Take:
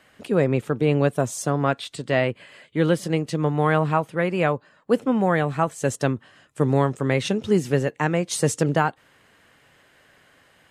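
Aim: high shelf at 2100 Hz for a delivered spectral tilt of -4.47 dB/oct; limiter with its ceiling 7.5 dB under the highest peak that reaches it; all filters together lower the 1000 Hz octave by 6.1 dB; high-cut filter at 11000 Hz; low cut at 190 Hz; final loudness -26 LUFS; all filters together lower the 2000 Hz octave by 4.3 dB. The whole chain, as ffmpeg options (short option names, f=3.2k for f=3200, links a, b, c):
-af "highpass=190,lowpass=11k,equalizer=f=1k:t=o:g=-8.5,equalizer=f=2k:t=o:g=-6.5,highshelf=f=2.1k:g=7,volume=2dB,alimiter=limit=-14.5dB:level=0:latency=1"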